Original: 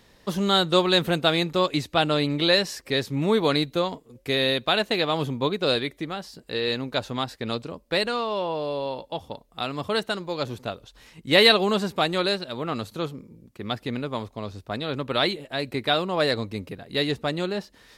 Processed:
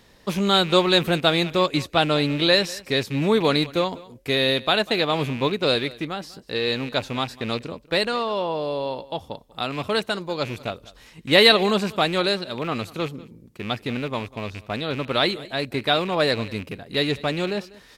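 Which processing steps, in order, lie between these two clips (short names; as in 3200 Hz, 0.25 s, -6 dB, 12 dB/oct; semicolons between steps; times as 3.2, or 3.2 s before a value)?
rattling part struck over -35 dBFS, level -27 dBFS; echo 0.195 s -21 dB; gain +2 dB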